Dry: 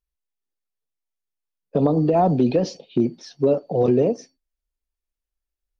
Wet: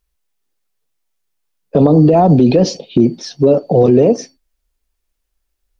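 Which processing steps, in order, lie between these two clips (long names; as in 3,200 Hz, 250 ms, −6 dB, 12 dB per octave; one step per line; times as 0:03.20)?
0:01.87–0:03.95: parametric band 1,500 Hz −4 dB 2.7 octaves
boost into a limiter +15 dB
level −1 dB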